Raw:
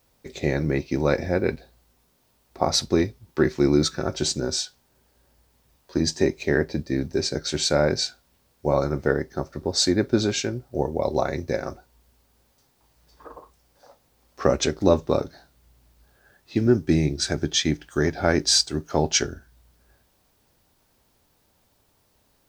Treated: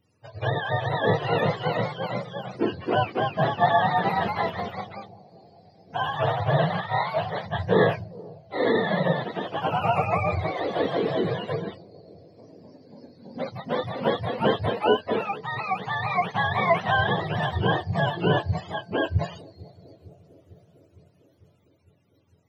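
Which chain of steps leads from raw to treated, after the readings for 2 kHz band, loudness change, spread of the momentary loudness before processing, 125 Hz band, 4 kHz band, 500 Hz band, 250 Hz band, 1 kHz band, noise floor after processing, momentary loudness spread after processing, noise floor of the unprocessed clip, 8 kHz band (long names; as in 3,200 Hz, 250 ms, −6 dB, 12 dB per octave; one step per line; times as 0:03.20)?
+4.5 dB, −2.0 dB, 9 LU, +0.5 dB, −7.5 dB, −1.0 dB, −5.5 dB, +8.5 dB, −62 dBFS, 12 LU, −66 dBFS, below −30 dB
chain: frequency axis turned over on the octave scale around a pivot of 500 Hz
bucket-brigade delay 452 ms, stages 2,048, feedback 68%, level −21 dB
delay with pitch and tempo change per echo 416 ms, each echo +1 semitone, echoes 3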